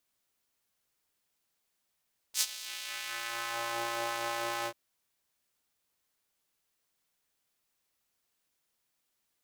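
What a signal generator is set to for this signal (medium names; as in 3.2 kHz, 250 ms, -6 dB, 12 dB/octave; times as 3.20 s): synth patch with filter wobble A#2, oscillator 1 square, filter highpass, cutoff 470 Hz, Q 1.1, filter envelope 3.5 oct, filter decay 1.41 s, filter sustain 20%, attack 68 ms, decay 0.05 s, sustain -18.5 dB, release 0.07 s, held 2.32 s, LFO 4.6 Hz, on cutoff 0.2 oct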